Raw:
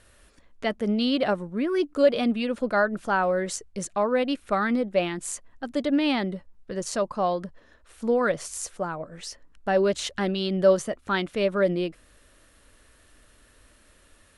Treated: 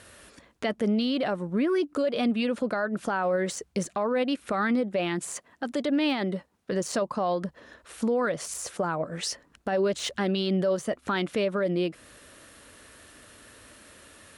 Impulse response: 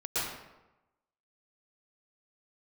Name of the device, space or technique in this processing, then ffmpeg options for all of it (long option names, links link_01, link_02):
podcast mastering chain: -filter_complex "[0:a]asettb=1/sr,asplit=3[link_01][link_02][link_03];[link_01]atrim=end=5.344[link_04];[link_02]atrim=start=5.34:end=6.72,asetpts=PTS-STARTPTS,afade=type=in:duration=0.004:curve=qsin,afade=type=out:start_time=1.376:duration=0.004:curve=qsin,highpass=frequency=190:poles=1[link_05];[link_03]atrim=start=6.716[link_06];[link_04][link_05]acrossfade=duration=0.004:curve1=hsin:curve2=qsin[link_07];[link_07][link_06]acrossfade=duration=0.004:curve1=qsin:curve2=hsin,highpass=100,deesser=0.75,acompressor=threshold=-33dB:ratio=2.5,alimiter=level_in=2.5dB:limit=-24dB:level=0:latency=1:release=20,volume=-2.5dB,volume=8.5dB" -ar 44100 -c:a libmp3lame -b:a 128k